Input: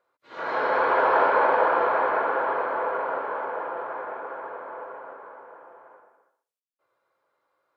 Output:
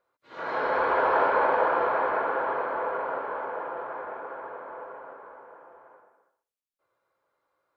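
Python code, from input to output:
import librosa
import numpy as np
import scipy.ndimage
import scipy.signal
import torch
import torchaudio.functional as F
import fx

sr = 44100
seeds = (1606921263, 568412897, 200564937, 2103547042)

y = fx.low_shelf(x, sr, hz=150.0, db=8.0)
y = F.gain(torch.from_numpy(y), -3.0).numpy()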